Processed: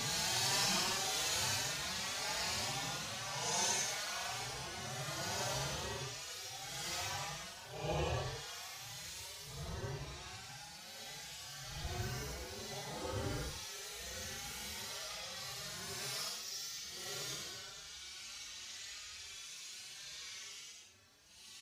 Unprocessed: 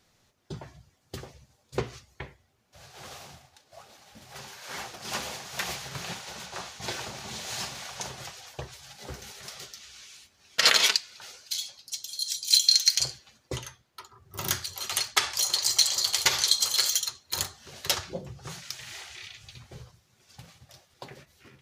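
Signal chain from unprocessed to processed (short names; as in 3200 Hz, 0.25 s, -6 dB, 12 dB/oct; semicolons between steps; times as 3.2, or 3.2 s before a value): slices in reverse order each 98 ms, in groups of 2; Paulstretch 7.5×, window 0.10 s, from 7.43; endless flanger 4.6 ms +1.8 Hz; gain +2.5 dB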